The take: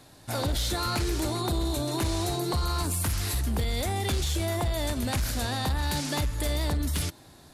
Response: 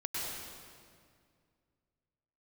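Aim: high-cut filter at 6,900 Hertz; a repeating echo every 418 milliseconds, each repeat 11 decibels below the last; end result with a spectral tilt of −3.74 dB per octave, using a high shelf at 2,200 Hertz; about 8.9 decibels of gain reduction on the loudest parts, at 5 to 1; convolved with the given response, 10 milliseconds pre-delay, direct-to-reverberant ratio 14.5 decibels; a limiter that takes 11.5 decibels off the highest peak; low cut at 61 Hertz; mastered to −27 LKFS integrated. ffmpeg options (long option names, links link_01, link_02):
-filter_complex "[0:a]highpass=61,lowpass=6900,highshelf=frequency=2200:gain=6.5,acompressor=threshold=-34dB:ratio=5,alimiter=level_in=10.5dB:limit=-24dB:level=0:latency=1,volume=-10.5dB,aecho=1:1:418|836|1254:0.282|0.0789|0.0221,asplit=2[link_01][link_02];[1:a]atrim=start_sample=2205,adelay=10[link_03];[link_02][link_03]afir=irnorm=-1:irlink=0,volume=-18.5dB[link_04];[link_01][link_04]amix=inputs=2:normalize=0,volume=15.5dB"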